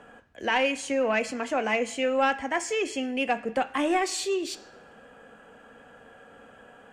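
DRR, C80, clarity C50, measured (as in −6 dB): 9.0 dB, 18.5 dB, 15.5 dB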